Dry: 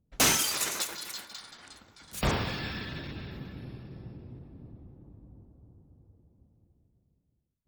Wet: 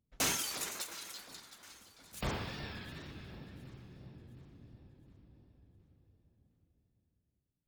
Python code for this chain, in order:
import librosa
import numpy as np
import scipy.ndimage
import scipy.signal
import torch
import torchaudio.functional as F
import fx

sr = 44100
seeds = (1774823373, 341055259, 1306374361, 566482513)

p1 = fx.wow_flutter(x, sr, seeds[0], rate_hz=2.1, depth_cents=68.0)
p2 = p1 + fx.echo_alternate(p1, sr, ms=357, hz=1000.0, feedback_pct=63, wet_db=-13, dry=0)
y = p2 * librosa.db_to_amplitude(-9.0)